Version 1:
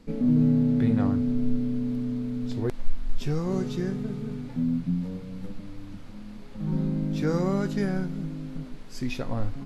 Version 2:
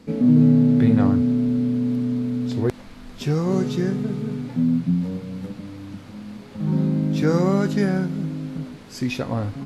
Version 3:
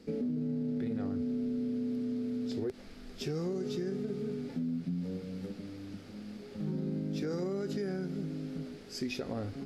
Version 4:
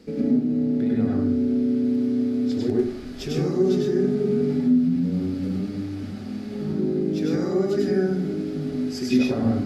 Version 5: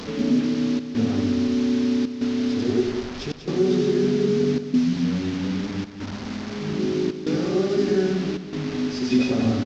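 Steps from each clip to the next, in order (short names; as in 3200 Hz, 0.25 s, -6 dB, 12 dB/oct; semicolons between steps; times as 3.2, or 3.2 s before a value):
HPF 72 Hz 12 dB/oct; gain +6.5 dB
thirty-one-band EQ 125 Hz -11 dB, 400 Hz +9 dB, 1000 Hz -10 dB, 5000 Hz +6 dB; limiter -15 dBFS, peak gain reduction 8 dB; compressor 2.5:1, threshold -25 dBFS, peak gain reduction 5 dB; gain -8 dB
reverb RT60 0.55 s, pre-delay 93 ms, DRR -3.5 dB; gain +5 dB
delta modulation 32 kbps, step -28.5 dBFS; step gate "xxxxxxxxxx..xxxx" 190 bpm -24 dB; echo 0.19 s -9.5 dB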